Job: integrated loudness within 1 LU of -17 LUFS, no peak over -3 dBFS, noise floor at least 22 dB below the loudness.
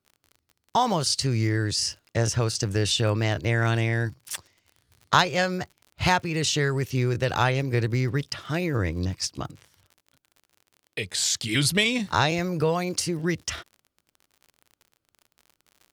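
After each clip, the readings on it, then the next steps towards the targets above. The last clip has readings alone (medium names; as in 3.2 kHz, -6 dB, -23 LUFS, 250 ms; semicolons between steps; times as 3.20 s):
tick rate 45 per s; loudness -25.0 LUFS; peak level -5.0 dBFS; loudness target -17.0 LUFS
-> de-click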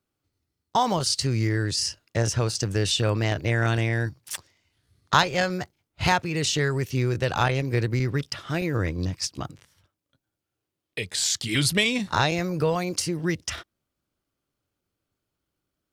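tick rate 0.063 per s; loudness -25.0 LUFS; peak level -6.0 dBFS; loudness target -17.0 LUFS
-> trim +8 dB; peak limiter -3 dBFS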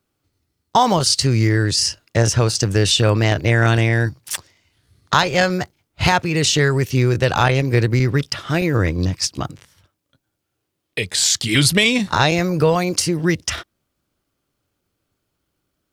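loudness -17.5 LUFS; peak level -3.0 dBFS; noise floor -76 dBFS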